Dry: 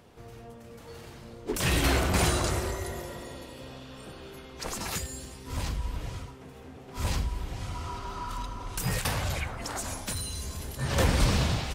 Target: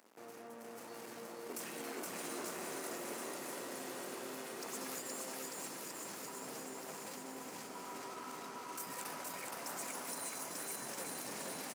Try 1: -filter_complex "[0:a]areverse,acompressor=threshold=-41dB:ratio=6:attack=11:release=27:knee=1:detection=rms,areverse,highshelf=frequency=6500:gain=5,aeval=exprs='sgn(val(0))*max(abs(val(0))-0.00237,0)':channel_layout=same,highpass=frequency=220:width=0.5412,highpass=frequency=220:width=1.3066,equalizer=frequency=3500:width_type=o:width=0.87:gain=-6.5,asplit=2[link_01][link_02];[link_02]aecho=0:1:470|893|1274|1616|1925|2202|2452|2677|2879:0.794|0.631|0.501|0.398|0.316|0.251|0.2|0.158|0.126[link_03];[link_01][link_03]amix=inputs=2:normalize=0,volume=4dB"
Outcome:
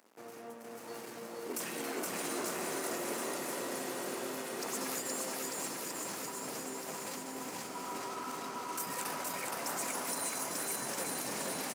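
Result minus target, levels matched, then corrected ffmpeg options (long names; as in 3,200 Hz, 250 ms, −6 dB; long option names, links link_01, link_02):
downward compressor: peak gain reduction −5 dB
-filter_complex "[0:a]areverse,acompressor=threshold=-47dB:ratio=6:attack=11:release=27:knee=1:detection=rms,areverse,highshelf=frequency=6500:gain=5,aeval=exprs='sgn(val(0))*max(abs(val(0))-0.00237,0)':channel_layout=same,highpass=frequency=220:width=0.5412,highpass=frequency=220:width=1.3066,equalizer=frequency=3500:width_type=o:width=0.87:gain=-6.5,asplit=2[link_01][link_02];[link_02]aecho=0:1:470|893|1274|1616|1925|2202|2452|2677|2879:0.794|0.631|0.501|0.398|0.316|0.251|0.2|0.158|0.126[link_03];[link_01][link_03]amix=inputs=2:normalize=0,volume=4dB"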